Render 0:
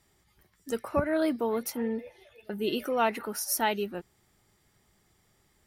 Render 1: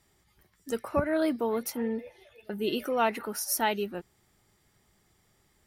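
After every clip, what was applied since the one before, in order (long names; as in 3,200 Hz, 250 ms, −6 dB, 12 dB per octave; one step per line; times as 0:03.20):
no processing that can be heard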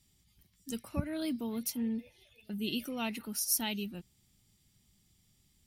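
flat-topped bell 830 Hz −14.5 dB 2.8 octaves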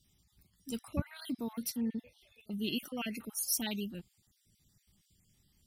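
time-frequency cells dropped at random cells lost 34%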